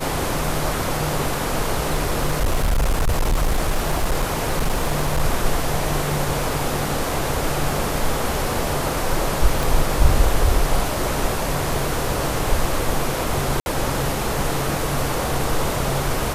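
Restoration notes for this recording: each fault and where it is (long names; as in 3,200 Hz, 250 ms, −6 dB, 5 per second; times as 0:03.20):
0:01.86–0:05.23: clipping −14.5 dBFS
0:09.63: click
0:13.60–0:13.66: drop-out 61 ms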